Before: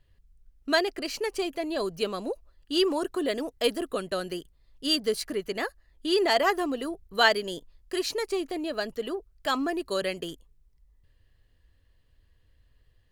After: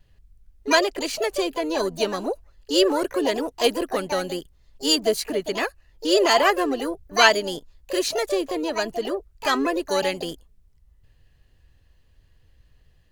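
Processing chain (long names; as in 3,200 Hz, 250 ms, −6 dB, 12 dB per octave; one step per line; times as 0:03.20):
pitch-shifted copies added +7 semitones −6 dB
pitch vibrato 0.49 Hz 7.5 cents
level +4.5 dB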